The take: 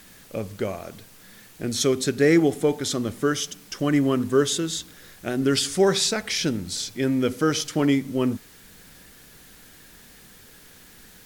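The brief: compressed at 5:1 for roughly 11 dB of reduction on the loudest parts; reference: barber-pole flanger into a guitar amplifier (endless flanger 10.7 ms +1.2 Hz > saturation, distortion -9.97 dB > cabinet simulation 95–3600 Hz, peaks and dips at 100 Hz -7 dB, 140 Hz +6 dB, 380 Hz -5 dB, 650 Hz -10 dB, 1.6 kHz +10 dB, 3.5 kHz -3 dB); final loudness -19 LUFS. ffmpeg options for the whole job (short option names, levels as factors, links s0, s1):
-filter_complex "[0:a]acompressor=threshold=0.0501:ratio=5,asplit=2[s0][s1];[s1]adelay=10.7,afreqshift=1.2[s2];[s0][s2]amix=inputs=2:normalize=1,asoftclip=threshold=0.0251,highpass=95,equalizer=f=100:t=q:w=4:g=-7,equalizer=f=140:t=q:w=4:g=6,equalizer=f=380:t=q:w=4:g=-5,equalizer=f=650:t=q:w=4:g=-10,equalizer=f=1600:t=q:w=4:g=10,equalizer=f=3500:t=q:w=4:g=-3,lowpass=f=3600:w=0.5412,lowpass=f=3600:w=1.3066,volume=11.2"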